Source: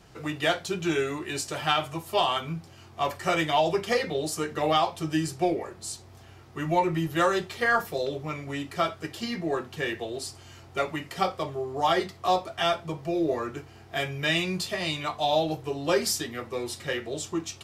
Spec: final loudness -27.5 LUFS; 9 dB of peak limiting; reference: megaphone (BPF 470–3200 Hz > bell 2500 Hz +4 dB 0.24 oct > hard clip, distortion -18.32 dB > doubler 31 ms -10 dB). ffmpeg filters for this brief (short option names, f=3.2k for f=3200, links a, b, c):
-filter_complex "[0:a]alimiter=limit=-19dB:level=0:latency=1,highpass=470,lowpass=3.2k,equalizer=f=2.5k:t=o:w=0.24:g=4,asoftclip=type=hard:threshold=-24.5dB,asplit=2[a][b];[b]adelay=31,volume=-10dB[c];[a][c]amix=inputs=2:normalize=0,volume=5.5dB"